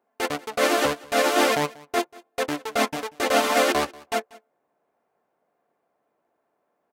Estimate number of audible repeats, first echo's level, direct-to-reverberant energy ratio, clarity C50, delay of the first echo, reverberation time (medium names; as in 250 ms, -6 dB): 1, -22.5 dB, no reverb, no reverb, 188 ms, no reverb